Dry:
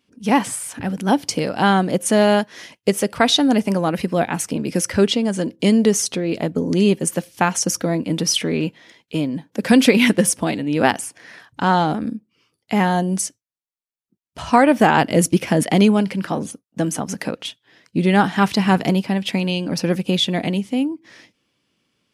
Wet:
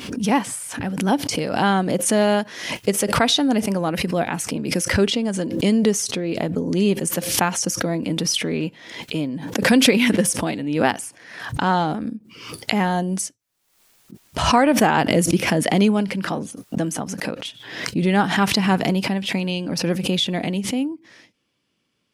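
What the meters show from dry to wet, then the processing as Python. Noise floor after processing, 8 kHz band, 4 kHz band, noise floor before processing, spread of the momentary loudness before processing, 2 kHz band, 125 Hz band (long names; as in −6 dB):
−70 dBFS, −0.5 dB, 0.0 dB, −82 dBFS, 12 LU, −0.5 dB, −2.0 dB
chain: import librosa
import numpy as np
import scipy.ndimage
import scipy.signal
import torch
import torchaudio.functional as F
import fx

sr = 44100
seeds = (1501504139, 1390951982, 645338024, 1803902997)

y = fx.pre_swell(x, sr, db_per_s=62.0)
y = y * librosa.db_to_amplitude(-3.0)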